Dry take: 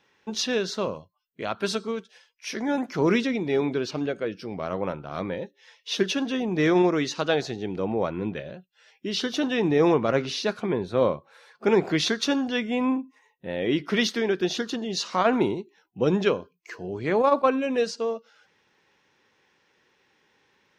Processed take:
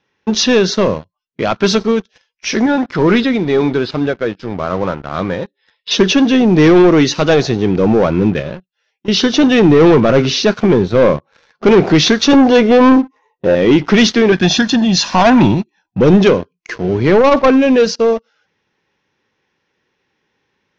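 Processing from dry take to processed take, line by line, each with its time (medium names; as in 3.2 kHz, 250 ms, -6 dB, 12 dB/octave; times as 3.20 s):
2.66–5.91 s: rippled Chebyshev low-pass 5.2 kHz, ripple 6 dB
8.07–9.08 s: fade out equal-power, to -16 dB
12.33–13.55 s: high-order bell 650 Hz +10 dB 2.3 oct
14.32–16.01 s: comb 1.2 ms, depth 81%
whole clip: waveshaping leveller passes 3; elliptic low-pass 6.2 kHz, stop band 80 dB; bass shelf 320 Hz +7 dB; trim +3.5 dB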